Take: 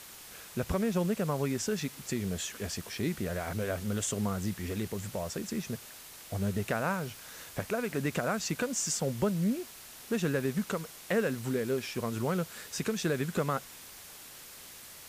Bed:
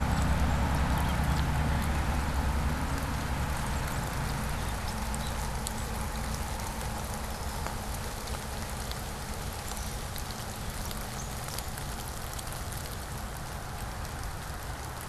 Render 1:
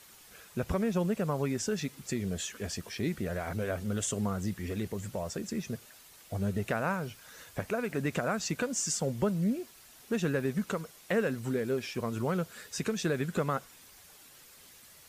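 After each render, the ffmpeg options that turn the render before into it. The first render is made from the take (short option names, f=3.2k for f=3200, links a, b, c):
-af "afftdn=nr=8:nf=-49"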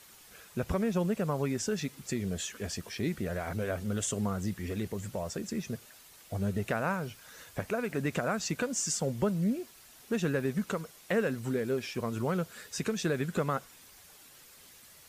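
-af anull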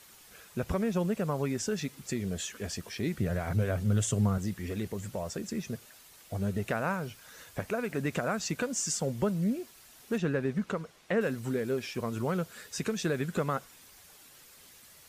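-filter_complex "[0:a]asettb=1/sr,asplit=3[a][b][c];[a]atrim=end=3.194[d];[b]atrim=start=3.19:end=4.38,asetpts=PTS-STARTPTS,afade=t=in:d=0.004:c=qsin,afade=t=out:st=1.186:d=0.004:c=qsin,equalizer=f=120:w=1.5:g=12[e];[c]atrim=start=4.376[f];[d][e]acrossfade=d=0.004:c1=hsin:c2=qsin[g];[g][f]acrossfade=d=0.004:c1=qsin:c2=hsin,asettb=1/sr,asplit=3[h][i][j];[h]atrim=end=10.184[k];[i]atrim=start=10.18:end=11.21,asetpts=PTS-STARTPTS,afade=t=in:d=0.004:c=qsin,afade=t=out:st=1.026:d=0.004:c=qsin,aemphasis=mode=reproduction:type=50fm[l];[j]atrim=start=11.206[m];[k][l]acrossfade=d=0.004:c1=hsin:c2=qsin[n];[n][m]acrossfade=d=0.004:c1=qsin:c2=hsin"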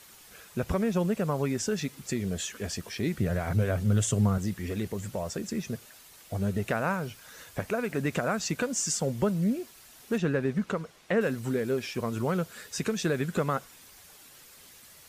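-af "volume=2.5dB"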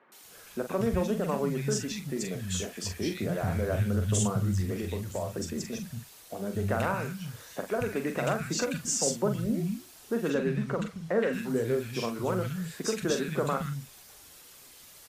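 -filter_complex "[0:a]asplit=2[a][b];[b]adelay=43,volume=-7.5dB[c];[a][c]amix=inputs=2:normalize=0,acrossover=split=190|1800[d][e][f];[f]adelay=120[g];[d]adelay=230[h];[h][e][g]amix=inputs=3:normalize=0"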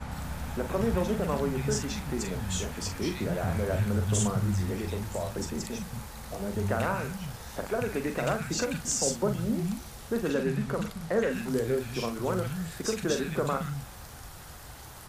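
-filter_complex "[1:a]volume=-9dB[a];[0:a][a]amix=inputs=2:normalize=0"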